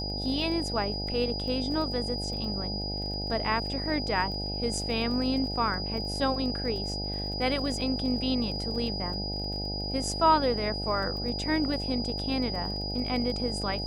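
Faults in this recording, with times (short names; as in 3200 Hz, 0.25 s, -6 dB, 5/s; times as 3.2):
buzz 50 Hz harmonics 17 -35 dBFS
crackle 21/s -37 dBFS
tone 4900 Hz -34 dBFS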